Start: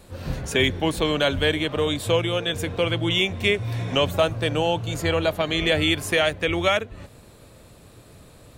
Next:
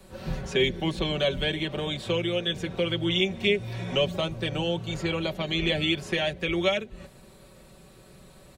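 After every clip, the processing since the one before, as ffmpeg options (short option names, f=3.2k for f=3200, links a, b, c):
-filter_complex "[0:a]acrossover=split=6000[a][b];[b]acompressor=threshold=-57dB:ratio=4:attack=1:release=60[c];[a][c]amix=inputs=2:normalize=0,aecho=1:1:5.3:0.74,acrossover=split=110|690|2100[d][e][f][g];[f]acompressor=threshold=-38dB:ratio=6[h];[d][e][h][g]amix=inputs=4:normalize=0,volume=-4dB"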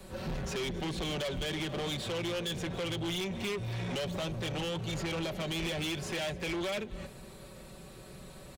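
-af "alimiter=limit=-19.5dB:level=0:latency=1:release=130,asoftclip=type=tanh:threshold=-34.5dB,aecho=1:1:273:0.1,volume=2.5dB"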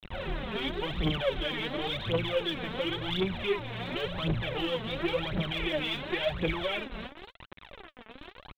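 -af "aresample=8000,acrusher=bits=6:mix=0:aa=0.000001,aresample=44100,aphaser=in_gain=1:out_gain=1:delay=4.7:decay=0.73:speed=0.93:type=triangular"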